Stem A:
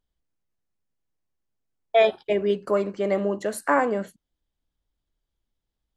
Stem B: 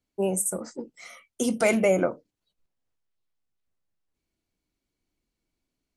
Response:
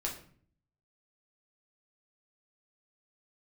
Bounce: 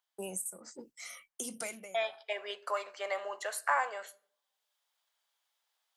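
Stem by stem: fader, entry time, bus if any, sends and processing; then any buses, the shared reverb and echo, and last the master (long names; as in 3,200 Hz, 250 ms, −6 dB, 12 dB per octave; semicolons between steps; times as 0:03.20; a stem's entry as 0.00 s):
0:02.04 −10.5 dB → 0:02.38 −3.5 dB, 0.00 s, send −15.5 dB, high-pass filter 740 Hz 24 dB per octave
+2.0 dB, 0.00 s, no send, first-order pre-emphasis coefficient 0.9; downward expander −58 dBFS; downward compressor 2.5 to 1, threshold −41 dBFS, peak gain reduction 13 dB; automatic ducking −16 dB, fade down 0.30 s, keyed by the first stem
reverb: on, RT60 0.50 s, pre-delay 6 ms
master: multiband upward and downward compressor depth 40%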